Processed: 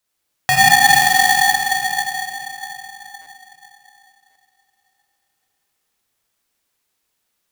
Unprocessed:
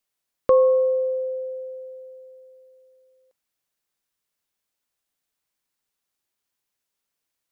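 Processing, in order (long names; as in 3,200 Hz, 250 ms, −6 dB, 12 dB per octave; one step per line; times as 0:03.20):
in parallel at −2.5 dB: downward compressor, threshold −27 dBFS, peak gain reduction 13 dB
on the sum: tape wow and flutter 130 cents
0:00.82–0:01.32: noise that follows the level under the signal 12 dB
dense smooth reverb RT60 3.7 s, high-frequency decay 0.75×, DRR −5.5 dB
buffer that repeats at 0:03.21/0:04.30, samples 256, times 8
ring modulator with a square carrier 1,300 Hz
level −1 dB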